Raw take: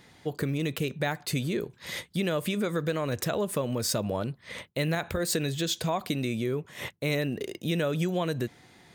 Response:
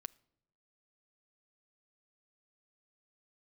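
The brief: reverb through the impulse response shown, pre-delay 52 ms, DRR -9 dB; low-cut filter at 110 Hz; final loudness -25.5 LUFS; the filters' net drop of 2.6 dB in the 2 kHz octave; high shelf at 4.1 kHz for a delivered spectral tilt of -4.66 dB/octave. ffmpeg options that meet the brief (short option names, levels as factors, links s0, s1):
-filter_complex "[0:a]highpass=110,equalizer=f=2000:t=o:g=-4,highshelf=f=4100:g=3,asplit=2[s0][s1];[1:a]atrim=start_sample=2205,adelay=52[s2];[s1][s2]afir=irnorm=-1:irlink=0,volume=5.01[s3];[s0][s3]amix=inputs=2:normalize=0,volume=0.562"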